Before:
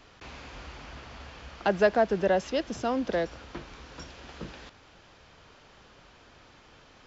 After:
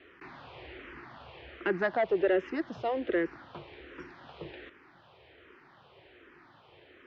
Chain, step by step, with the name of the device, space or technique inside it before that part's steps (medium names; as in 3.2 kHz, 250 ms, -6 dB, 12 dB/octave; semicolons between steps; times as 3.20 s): barber-pole phaser into a guitar amplifier (barber-pole phaser -1.3 Hz; saturation -22.5 dBFS, distortion -13 dB; cabinet simulation 96–3500 Hz, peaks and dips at 210 Hz -7 dB, 360 Hz +10 dB, 1.9 kHz +5 dB)